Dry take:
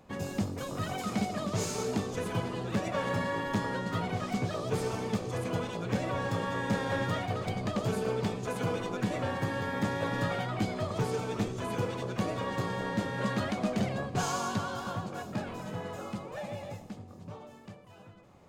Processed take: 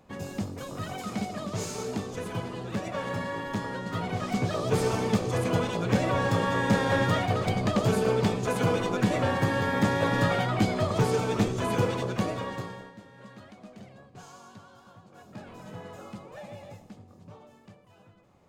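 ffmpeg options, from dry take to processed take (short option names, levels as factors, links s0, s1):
-af "volume=9.44,afade=t=in:st=3.81:d=1.07:silence=0.421697,afade=t=out:st=11.88:d=0.79:silence=0.266073,afade=t=out:st=12.67:d=0.26:silence=0.251189,afade=t=in:st=15.04:d=0.68:silence=0.223872"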